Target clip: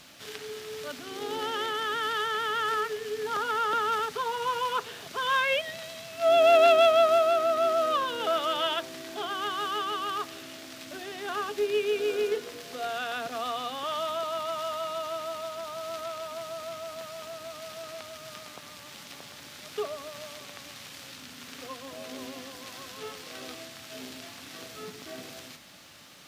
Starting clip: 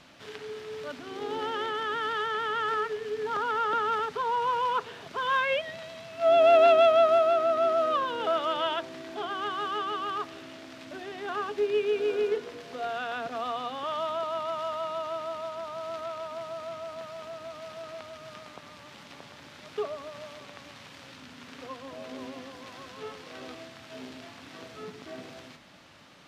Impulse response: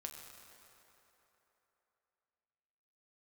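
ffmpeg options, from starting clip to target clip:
-af "aemphasis=mode=production:type=75fm,bandreject=f=960:w=19"

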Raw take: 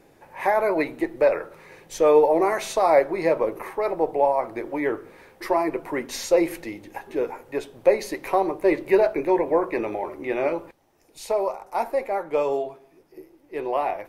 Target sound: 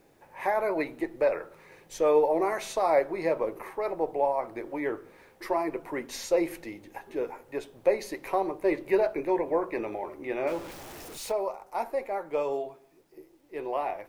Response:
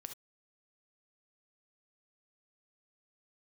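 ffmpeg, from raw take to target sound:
-filter_complex "[0:a]asettb=1/sr,asplit=3[a][b][c];[a]atrim=end=10.474[d];[b]atrim=start=10.47:end=11.32,asetpts=PTS-STARTPTS,afade=t=in:d=0.004:c=qsin,afade=t=out:st=0.846:d=0.004:c=qsin,aeval=exprs='val(0)+0.5*0.0251*sgn(val(0))':c=same[e];[c]atrim=start=11.316[f];[d][e]acrossfade=d=0.004:c1=hsin:c2=qsin[g];[g][f]acrossfade=d=0.004:c1=qsin:c2=hsin,acrusher=bits=10:mix=0:aa=0.000001,volume=-6dB"

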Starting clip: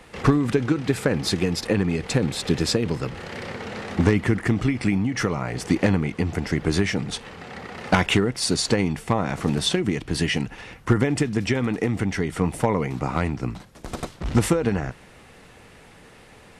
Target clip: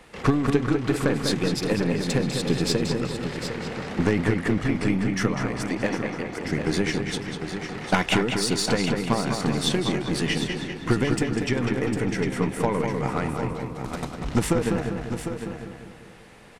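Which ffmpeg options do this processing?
-filter_complex "[0:a]equalizer=f=90:t=o:w=0.36:g=-9.5,asplit=2[a][b];[b]adelay=198,lowpass=f=4.7k:p=1,volume=-5dB,asplit=2[c][d];[d]adelay=198,lowpass=f=4.7k:p=1,volume=0.5,asplit=2[e][f];[f]adelay=198,lowpass=f=4.7k:p=1,volume=0.5,asplit=2[g][h];[h]adelay=198,lowpass=f=4.7k:p=1,volume=0.5,asplit=2[i][j];[j]adelay=198,lowpass=f=4.7k:p=1,volume=0.5,asplit=2[k][l];[l]adelay=198,lowpass=f=4.7k:p=1,volume=0.5[m];[c][e][g][i][k][m]amix=inputs=6:normalize=0[n];[a][n]amix=inputs=2:normalize=0,aeval=exprs='0.531*(cos(1*acos(clip(val(0)/0.531,-1,1)))-cos(1*PI/2))+0.0335*(cos(6*acos(clip(val(0)/0.531,-1,1)))-cos(6*PI/2))':c=same,asettb=1/sr,asplit=3[o][p][q];[o]atrim=end=5.634[r];[p]atrim=start=5.63:end=6.45,asetpts=PTS-STARTPTS,afade=t=in:d=0.004:c=qsin,afade=t=out:st=0.816:d=0.004:c=qsin,bass=f=250:g=-13,treble=f=4k:g=-5[s];[q]atrim=start=6.446[t];[r][s]acrossfade=d=0.004:c1=hsin:c2=qsin[u];[u][t]acrossfade=d=0.004:c1=qsin:c2=hsin,asplit=2[v][w];[w]aecho=0:1:753:0.355[x];[v][x]amix=inputs=2:normalize=0,volume=-2.5dB"

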